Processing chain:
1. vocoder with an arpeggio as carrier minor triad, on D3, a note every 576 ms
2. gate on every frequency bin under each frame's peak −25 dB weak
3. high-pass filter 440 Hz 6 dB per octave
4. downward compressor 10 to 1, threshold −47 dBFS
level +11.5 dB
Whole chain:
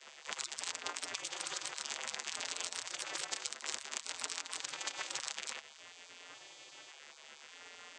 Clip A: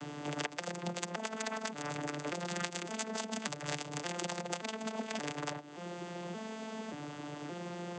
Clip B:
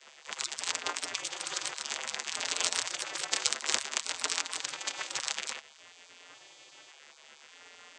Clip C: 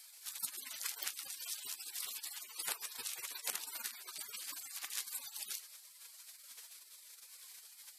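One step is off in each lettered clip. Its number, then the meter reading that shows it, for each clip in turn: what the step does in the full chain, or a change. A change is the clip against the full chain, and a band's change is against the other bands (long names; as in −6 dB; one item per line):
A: 2, 125 Hz band +22.5 dB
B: 4, average gain reduction 4.0 dB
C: 1, 8 kHz band +7.5 dB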